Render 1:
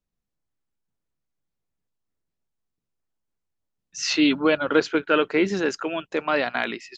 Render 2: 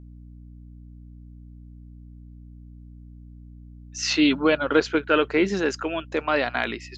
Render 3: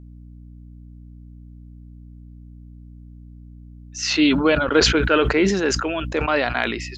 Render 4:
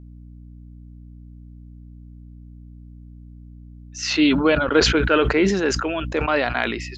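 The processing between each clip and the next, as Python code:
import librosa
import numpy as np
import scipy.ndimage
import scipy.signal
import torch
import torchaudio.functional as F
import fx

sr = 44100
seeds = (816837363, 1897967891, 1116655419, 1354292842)

y1 = fx.add_hum(x, sr, base_hz=60, snr_db=17)
y2 = fx.sustainer(y1, sr, db_per_s=43.0)
y2 = y2 * librosa.db_to_amplitude(2.0)
y3 = fx.high_shelf(y2, sr, hz=5000.0, db=-4.0)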